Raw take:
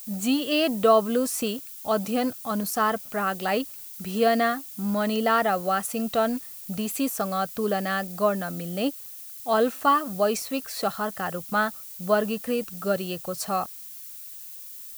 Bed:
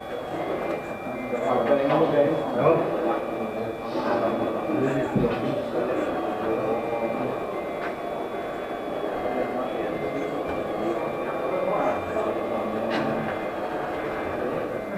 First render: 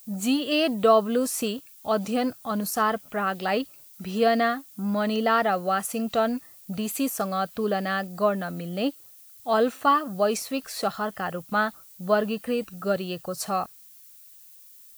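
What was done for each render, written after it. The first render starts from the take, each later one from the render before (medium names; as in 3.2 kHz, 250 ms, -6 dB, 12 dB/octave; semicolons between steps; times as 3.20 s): noise print and reduce 9 dB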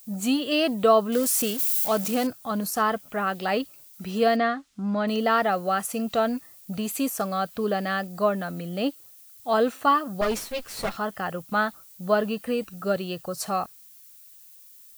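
1.12–2.27 s: zero-crossing glitches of -22.5 dBFS; 4.36–5.08 s: distance through air 110 m; 10.21–10.97 s: comb filter that takes the minimum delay 9.3 ms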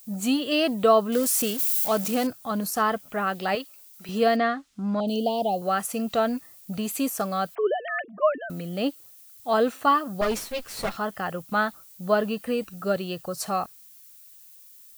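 3.55–4.09 s: high-pass 700 Hz 6 dB/octave; 5.00–5.62 s: elliptic band-stop 810–3000 Hz, stop band 60 dB; 7.55–8.50 s: formants replaced by sine waves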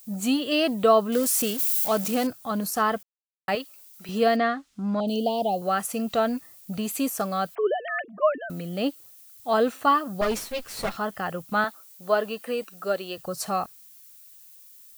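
3.03–3.48 s: mute; 11.64–13.18 s: high-pass 340 Hz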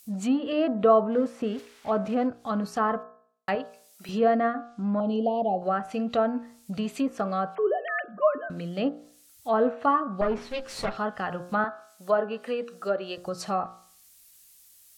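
low-pass that closes with the level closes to 1.4 kHz, closed at -21.5 dBFS; de-hum 59.15 Hz, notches 29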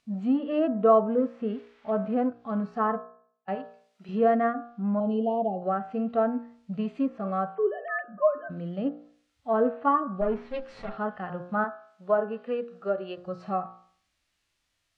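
low-pass 2.6 kHz 12 dB/octave; harmonic-percussive split percussive -14 dB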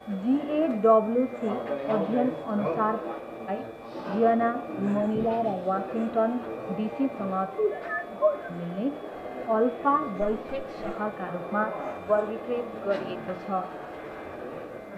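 add bed -10 dB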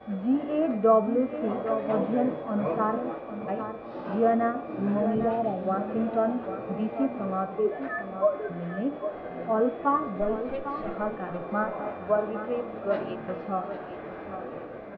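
distance through air 280 m; delay 801 ms -10 dB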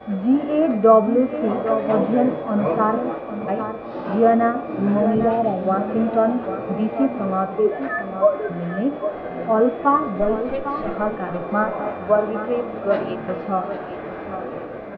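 trim +7.5 dB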